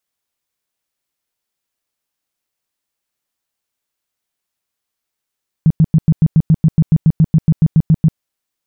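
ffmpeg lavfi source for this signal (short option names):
-f lavfi -i "aevalsrc='0.531*sin(2*PI*159*mod(t,0.14))*lt(mod(t,0.14),7/159)':d=2.52:s=44100"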